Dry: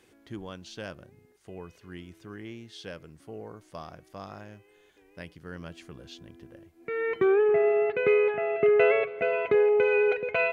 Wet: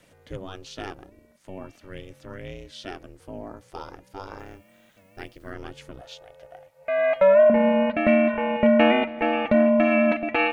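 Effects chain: ring modulator 190 Hz; 4.38–5.51 added noise blue -77 dBFS; 6.01–7.5 resonant low shelf 430 Hz -13 dB, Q 3; gain +6.5 dB

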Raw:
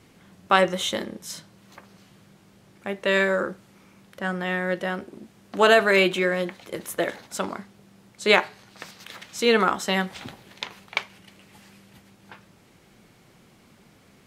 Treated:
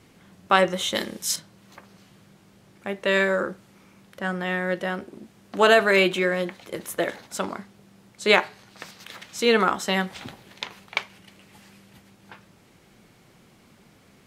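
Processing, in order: 0.95–1.36 high shelf 2000 Hz +12 dB

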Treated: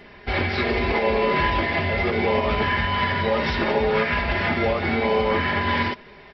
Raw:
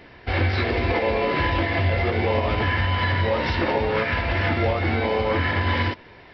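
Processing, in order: comb 4.9 ms, depth 63%

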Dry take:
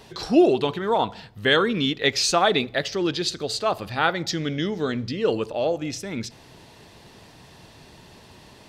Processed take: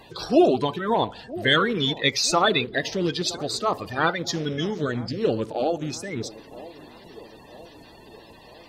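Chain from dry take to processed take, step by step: bin magnitudes rounded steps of 30 dB; band-limited delay 0.965 s, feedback 56%, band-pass 440 Hz, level -17 dB

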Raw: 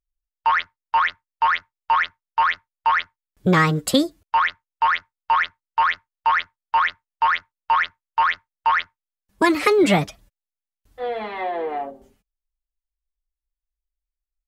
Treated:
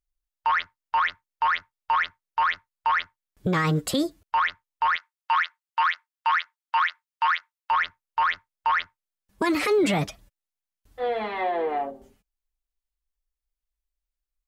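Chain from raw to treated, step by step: 4.96–7.71 HPF 1100 Hz 12 dB/oct; limiter -15.5 dBFS, peak gain reduction 11.5 dB

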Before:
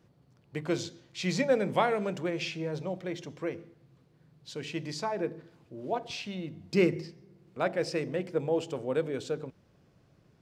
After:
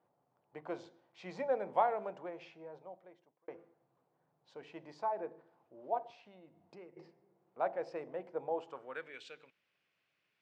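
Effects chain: 6.08–6.97 compressor 4:1, threshold -41 dBFS, peak gain reduction 18 dB; band-pass sweep 810 Hz -> 2500 Hz, 8.54–9.23; 2–3.48 fade out

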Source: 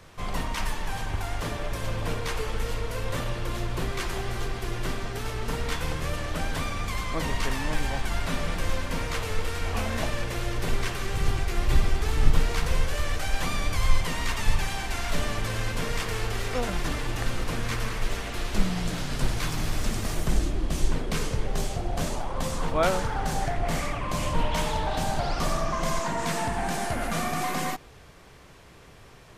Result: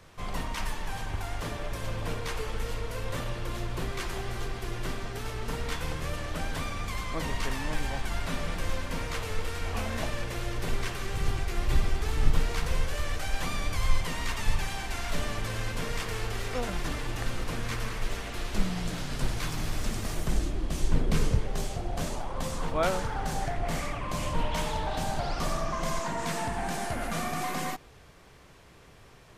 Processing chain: 20.92–21.39 low shelf 340 Hz +8.5 dB; gain -3.5 dB

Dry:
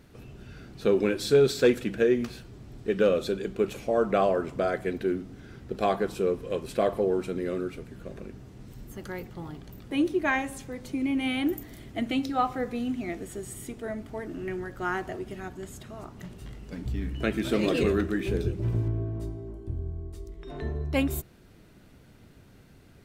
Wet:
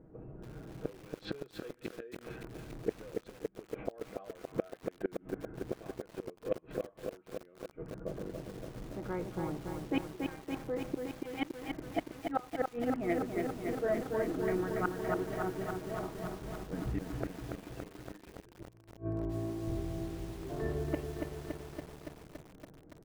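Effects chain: Wiener smoothing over 9 samples; low shelf 80 Hz +2 dB; comb 6.3 ms, depth 45%; low-pass opened by the level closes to 570 Hz, open at -20.5 dBFS; flipped gate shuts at -21 dBFS, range -31 dB; tone controls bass -8 dB, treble -12 dB; lo-fi delay 0.283 s, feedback 80%, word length 9-bit, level -4 dB; gain +2.5 dB

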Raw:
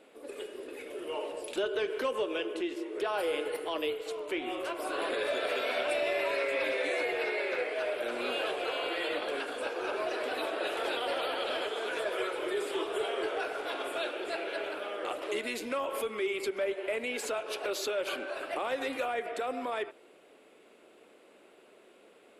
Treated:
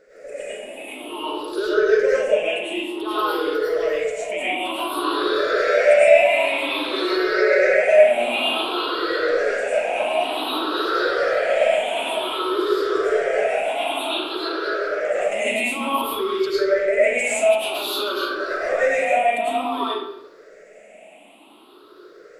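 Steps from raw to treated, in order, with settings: moving spectral ripple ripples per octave 0.56, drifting +0.54 Hz, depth 20 dB; 6.93–7.94 comb 5.3 ms, depth 86%; reverb RT60 0.75 s, pre-delay 65 ms, DRR -9 dB; gain -2 dB

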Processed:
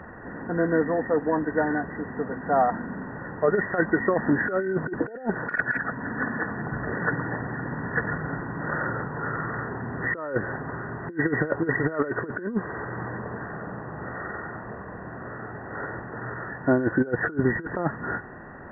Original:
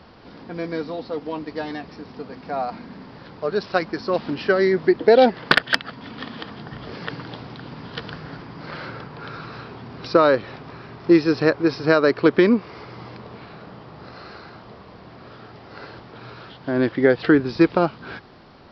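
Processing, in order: nonlinear frequency compression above 1400 Hz 4:1; negative-ratio compressor -22 dBFS, ratio -0.5

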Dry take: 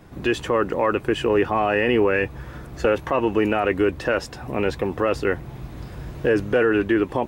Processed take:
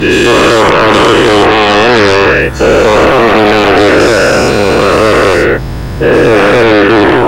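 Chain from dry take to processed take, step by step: spectral dilation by 0.48 s; sine folder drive 11 dB, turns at 1.5 dBFS; gain -3 dB

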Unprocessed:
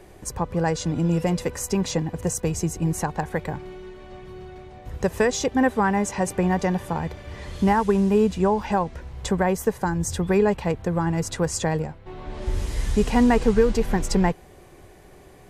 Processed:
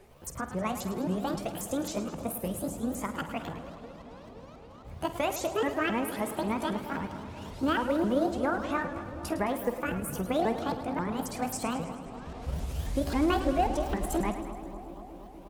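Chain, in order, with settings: repeated pitch sweeps +10.5 st, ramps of 0.268 s; doubler 49 ms -13.5 dB; analogue delay 0.239 s, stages 2048, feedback 78%, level -14 dB; warbling echo 0.106 s, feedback 64%, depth 88 cents, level -12 dB; gain -8 dB

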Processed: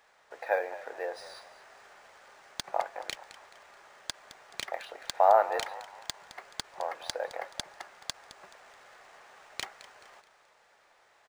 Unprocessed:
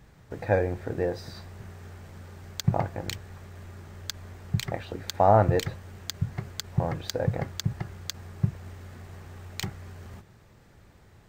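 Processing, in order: HPF 590 Hz 24 dB/oct; on a send: frequency-shifting echo 0.214 s, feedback 40%, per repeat +46 Hz, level -15.5 dB; on the sum: decimation joined by straight lines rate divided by 3×

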